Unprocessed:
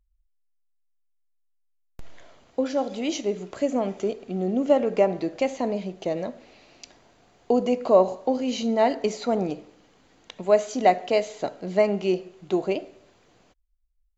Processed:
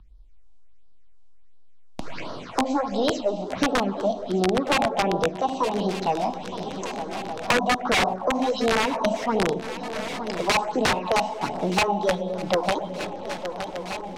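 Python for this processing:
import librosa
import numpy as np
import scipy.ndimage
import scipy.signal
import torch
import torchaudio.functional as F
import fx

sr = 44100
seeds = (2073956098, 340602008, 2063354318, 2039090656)

y = fx.formant_shift(x, sr, semitones=5)
y = fx.high_shelf(y, sr, hz=5000.0, db=-9.0)
y = fx.room_shoebox(y, sr, seeds[0], volume_m3=980.0, walls='mixed', distance_m=0.59)
y = fx.phaser_stages(y, sr, stages=6, low_hz=110.0, high_hz=2300.0, hz=1.4, feedback_pct=15)
y = (np.mod(10.0 ** (17.0 / 20.0) * y + 1.0, 2.0) - 1.0) / 10.0 ** (17.0 / 20.0)
y = fx.air_absorb(y, sr, metres=67.0)
y = fx.echo_swing(y, sr, ms=1222, ratio=3, feedback_pct=47, wet_db=-19.5)
y = fx.band_squash(y, sr, depth_pct=70)
y = y * librosa.db_to_amplitude(4.5)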